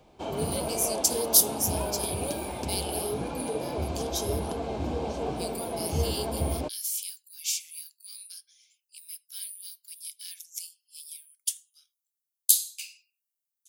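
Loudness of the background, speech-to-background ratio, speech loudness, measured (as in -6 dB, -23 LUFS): -32.5 LUFS, 3.5 dB, -29.0 LUFS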